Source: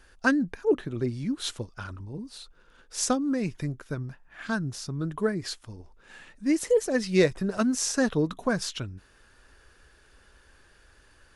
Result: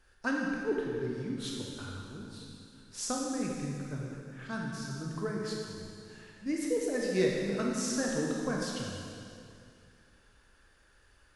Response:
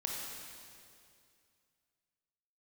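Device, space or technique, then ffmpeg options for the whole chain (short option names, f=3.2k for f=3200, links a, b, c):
stairwell: -filter_complex "[1:a]atrim=start_sample=2205[a];[0:a][a]afir=irnorm=-1:irlink=0,volume=-8dB"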